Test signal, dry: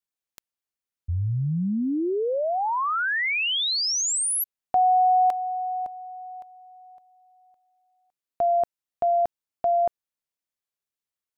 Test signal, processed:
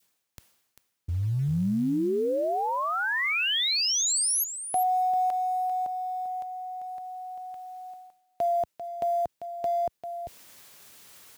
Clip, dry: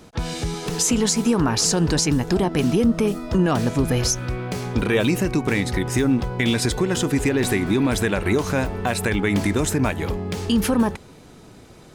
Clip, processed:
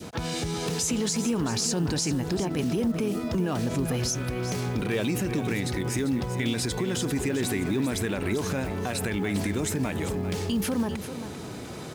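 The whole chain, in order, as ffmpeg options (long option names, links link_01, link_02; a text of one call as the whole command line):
ffmpeg -i in.wav -filter_complex "[0:a]acompressor=threshold=-36dB:ratio=3:attack=0.19:release=70:knee=6:detection=peak,asplit=2[link_01][link_02];[link_02]aecho=0:1:394:0.299[link_03];[link_01][link_03]amix=inputs=2:normalize=0,adynamicequalizer=threshold=0.00316:dfrequency=1100:dqfactor=0.86:tfrequency=1100:tqfactor=0.86:attack=5:release=100:ratio=0.333:range=1.5:mode=cutabove:tftype=bell,highpass=78,areverse,acompressor=mode=upward:threshold=-41dB:ratio=4:attack=0.23:release=451:knee=2.83:detection=peak,areverse,acrusher=bits=8:mode=log:mix=0:aa=0.000001,volume=8.5dB" out.wav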